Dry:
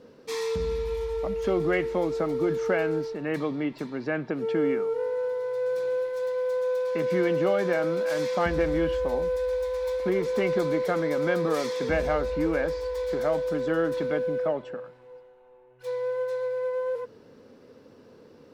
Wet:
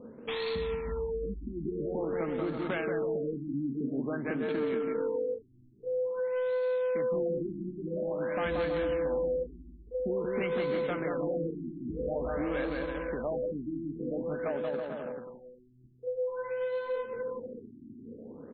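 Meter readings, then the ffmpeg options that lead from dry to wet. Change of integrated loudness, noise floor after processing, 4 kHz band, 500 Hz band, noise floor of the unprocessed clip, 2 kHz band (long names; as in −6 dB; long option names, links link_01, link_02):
−6.0 dB, −54 dBFS, −5.5 dB, −6.0 dB, −53 dBFS, −7.0 dB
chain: -af "aeval=exprs='0.237*sin(PI/2*1.58*val(0)/0.237)':channel_layout=same,aecho=1:1:180|324|439.2|531.4|605.1:0.631|0.398|0.251|0.158|0.1,crystalizer=i=3:c=0,acompressor=threshold=-28dB:ratio=2.5,highshelf=frequency=4000:gain=11,adynamicsmooth=sensitivity=3:basefreq=930,equalizer=frequency=230:width=5.2:gain=9,afftfilt=real='re*lt(b*sr/1024,350*pow(4500/350,0.5+0.5*sin(2*PI*0.49*pts/sr)))':imag='im*lt(b*sr/1024,350*pow(4500/350,0.5+0.5*sin(2*PI*0.49*pts/sr)))':win_size=1024:overlap=0.75,volume=-6dB"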